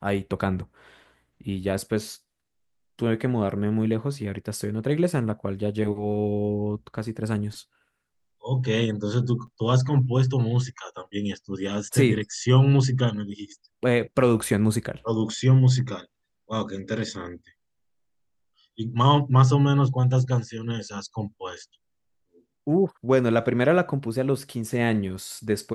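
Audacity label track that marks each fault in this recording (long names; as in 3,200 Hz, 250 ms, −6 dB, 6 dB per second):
9.470000	9.480000	drop-out 6 ms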